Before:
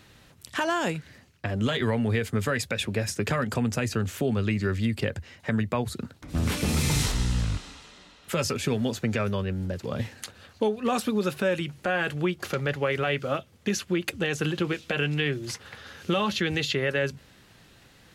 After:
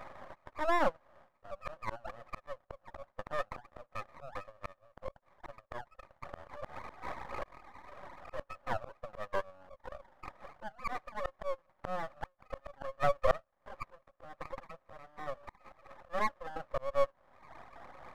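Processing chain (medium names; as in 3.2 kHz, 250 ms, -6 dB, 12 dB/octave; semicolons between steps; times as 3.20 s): brick-wall FIR band-pass 510–1300 Hz; reverb removal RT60 1.1 s; in parallel at -3 dB: compression, threshold -45 dBFS, peak gain reduction 20 dB; on the sum: slow attack 768 ms; half-wave rectifier; trim +16.5 dB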